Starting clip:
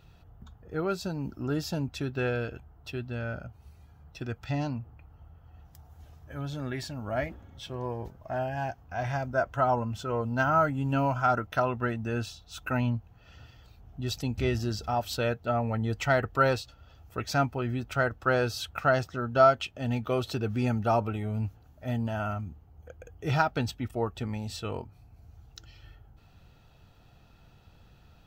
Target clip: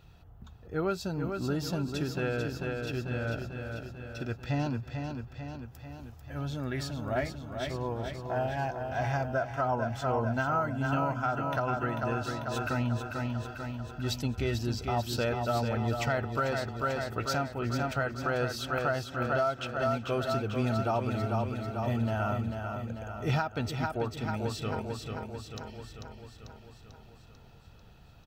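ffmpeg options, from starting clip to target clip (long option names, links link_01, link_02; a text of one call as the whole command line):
ffmpeg -i in.wav -filter_complex "[0:a]asplit=2[link_01][link_02];[link_02]aecho=0:1:443|886|1329|1772|2215|2658|3101|3544:0.501|0.301|0.18|0.108|0.065|0.039|0.0234|0.014[link_03];[link_01][link_03]amix=inputs=2:normalize=0,alimiter=limit=-19.5dB:level=0:latency=1:release=415,asplit=2[link_04][link_05];[link_05]aecho=0:1:364:0.0794[link_06];[link_04][link_06]amix=inputs=2:normalize=0" out.wav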